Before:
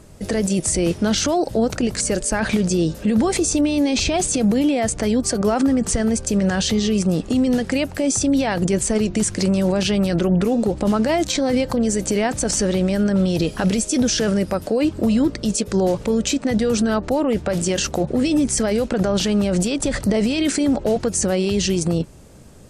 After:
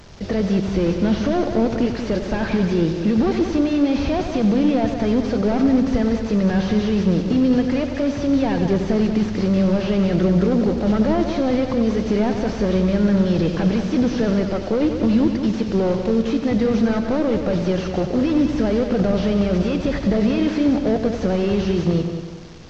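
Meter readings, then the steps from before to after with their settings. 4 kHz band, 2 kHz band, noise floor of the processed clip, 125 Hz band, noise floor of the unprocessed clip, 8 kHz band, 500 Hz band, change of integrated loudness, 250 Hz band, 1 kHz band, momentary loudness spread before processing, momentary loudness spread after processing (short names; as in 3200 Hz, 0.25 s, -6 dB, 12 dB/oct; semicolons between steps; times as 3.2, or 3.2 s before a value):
-7.5 dB, -3.0 dB, -27 dBFS, +1.5 dB, -36 dBFS, under -20 dB, 0.0 dB, 0.0 dB, +1.0 dB, -1.0 dB, 3 LU, 4 LU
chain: delta modulation 32 kbps, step -37.5 dBFS; multi-head echo 93 ms, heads first and second, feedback 48%, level -10 dB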